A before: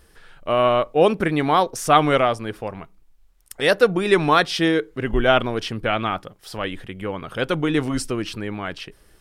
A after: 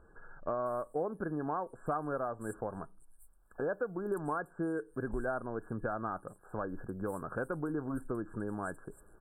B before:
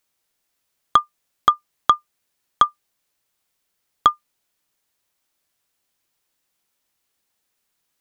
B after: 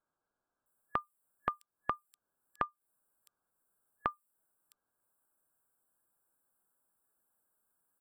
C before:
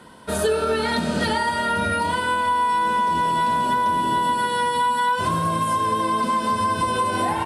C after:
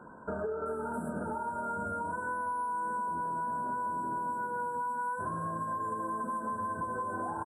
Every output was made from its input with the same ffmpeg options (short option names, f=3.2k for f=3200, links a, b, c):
-filter_complex "[0:a]acrossover=split=5400[a][b];[b]acompressor=threshold=-48dB:ratio=4:attack=1:release=60[c];[a][c]amix=inputs=2:normalize=0,afftfilt=real='re*(1-between(b*sr/4096,1700,7400))':imag='im*(1-between(b*sr/4096,1700,7400))':win_size=4096:overlap=0.75,equalizer=f=61:w=0.64:g=-4.5,acompressor=threshold=-30dB:ratio=5,acrossover=split=5300[d][e];[e]adelay=660[f];[d][f]amix=inputs=2:normalize=0,volume=-3.5dB"